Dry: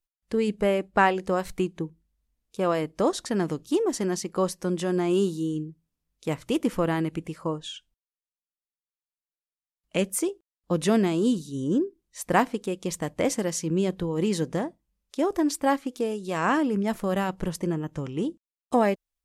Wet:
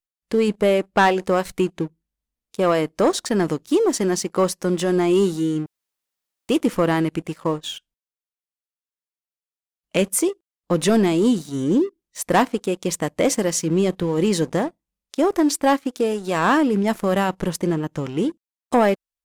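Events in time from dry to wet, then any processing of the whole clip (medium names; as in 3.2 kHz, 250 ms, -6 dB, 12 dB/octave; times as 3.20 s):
5.66–6.49 s: room tone
whole clip: bass shelf 110 Hz -8.5 dB; waveshaping leveller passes 2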